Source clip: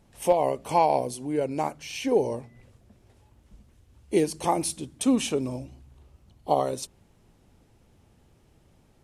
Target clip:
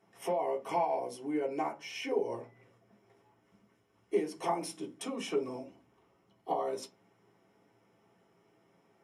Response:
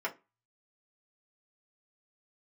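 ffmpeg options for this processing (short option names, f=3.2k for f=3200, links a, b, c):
-filter_complex "[0:a]acompressor=threshold=-25dB:ratio=12[a];[1:a]atrim=start_sample=2205[b];[a][b]afir=irnorm=-1:irlink=0,volume=-7dB"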